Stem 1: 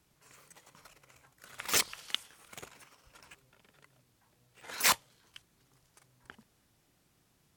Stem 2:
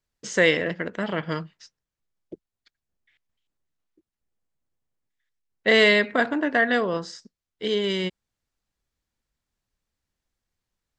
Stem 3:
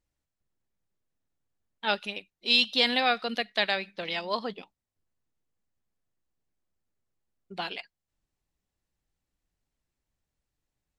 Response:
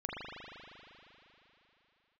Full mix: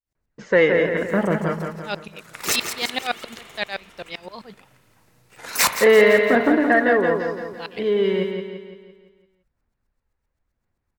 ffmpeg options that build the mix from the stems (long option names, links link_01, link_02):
-filter_complex "[0:a]adelay=750,volume=-1dB,asplit=3[link_01][link_02][link_03];[link_02]volume=-8.5dB[link_04];[link_03]volume=-9dB[link_05];[1:a]aphaser=in_gain=1:out_gain=1:delay=2.4:decay=0.42:speed=0.95:type=sinusoidal,lowpass=1900,adelay=150,volume=-3.5dB,asplit=2[link_06][link_07];[link_07]volume=-5.5dB[link_08];[2:a]aeval=exprs='val(0)*pow(10,-29*if(lt(mod(-7.7*n/s,1),2*abs(-7.7)/1000),1-mod(-7.7*n/s,1)/(2*abs(-7.7)/1000),(mod(-7.7*n/s,1)-2*abs(-7.7)/1000)/(1-2*abs(-7.7)/1000))/20)':channel_layout=same,volume=-1.5dB,asplit=2[link_09][link_10];[link_10]apad=whole_len=366496[link_11];[link_01][link_11]sidechaincompress=threshold=-35dB:ratio=8:attack=8.2:release=1170[link_12];[3:a]atrim=start_sample=2205[link_13];[link_04][link_13]afir=irnorm=-1:irlink=0[link_14];[link_05][link_08]amix=inputs=2:normalize=0,aecho=0:1:170|340|510|680|850|1020|1190:1|0.49|0.24|0.118|0.0576|0.0282|0.0138[link_15];[link_12][link_06][link_09][link_14][link_15]amix=inputs=5:normalize=0,equalizer=frequency=3200:width=4.5:gain=-5,acontrast=81"